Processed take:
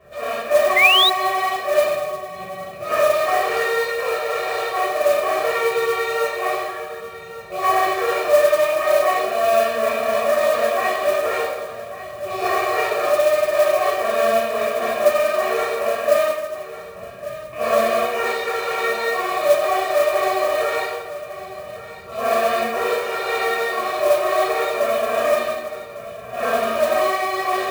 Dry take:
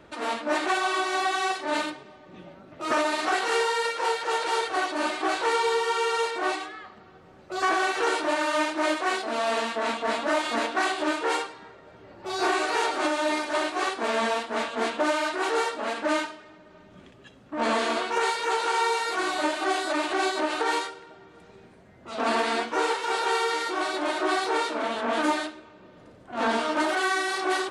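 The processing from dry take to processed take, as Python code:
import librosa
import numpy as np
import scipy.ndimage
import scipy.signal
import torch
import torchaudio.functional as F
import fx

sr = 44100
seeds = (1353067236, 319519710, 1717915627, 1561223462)

p1 = fx.rattle_buzz(x, sr, strikes_db=-44.0, level_db=-27.0)
p2 = scipy.signal.sosfilt(scipy.signal.butter(2, 52.0, 'highpass', fs=sr, output='sos'), p1)
p3 = fx.high_shelf(p2, sr, hz=3400.0, db=-11.5)
p4 = p3 + 0.93 * np.pad(p3, (int(1.7 * sr / 1000.0), 0))[:len(p3)]
p5 = p4 + fx.echo_single(p4, sr, ms=1150, db=-14.0, dry=0)
p6 = fx.room_shoebox(p5, sr, seeds[0], volume_m3=460.0, walls='mixed', distance_m=3.4)
p7 = fx.spec_paint(p6, sr, seeds[1], shape='rise', start_s=0.76, length_s=0.34, low_hz=2000.0, high_hz=4000.0, level_db=-9.0)
p8 = fx.small_body(p7, sr, hz=(580.0, 2400.0), ring_ms=45, db=7)
p9 = fx.mod_noise(p8, sr, seeds[2], snr_db=19)
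y = p9 * 10.0 ** (-5.5 / 20.0)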